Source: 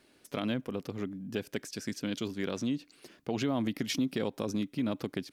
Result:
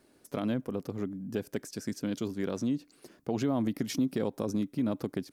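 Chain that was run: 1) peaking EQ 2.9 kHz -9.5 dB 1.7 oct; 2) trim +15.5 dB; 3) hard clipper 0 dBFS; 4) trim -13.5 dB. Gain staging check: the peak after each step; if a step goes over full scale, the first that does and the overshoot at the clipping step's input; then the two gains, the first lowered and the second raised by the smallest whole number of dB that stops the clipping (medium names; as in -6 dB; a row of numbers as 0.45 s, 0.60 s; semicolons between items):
-20.0 dBFS, -4.5 dBFS, -4.5 dBFS, -18.0 dBFS; nothing clips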